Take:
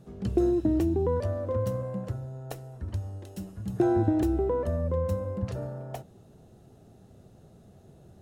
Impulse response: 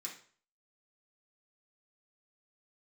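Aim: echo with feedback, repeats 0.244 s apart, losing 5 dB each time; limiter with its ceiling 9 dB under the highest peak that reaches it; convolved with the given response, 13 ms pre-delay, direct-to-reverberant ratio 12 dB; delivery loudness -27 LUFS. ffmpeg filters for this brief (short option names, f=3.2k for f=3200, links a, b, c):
-filter_complex "[0:a]alimiter=limit=-20.5dB:level=0:latency=1,aecho=1:1:244|488|732|976|1220|1464|1708:0.562|0.315|0.176|0.0988|0.0553|0.031|0.0173,asplit=2[a][b];[1:a]atrim=start_sample=2205,adelay=13[c];[b][c]afir=irnorm=-1:irlink=0,volume=-9.5dB[d];[a][d]amix=inputs=2:normalize=0,volume=2dB"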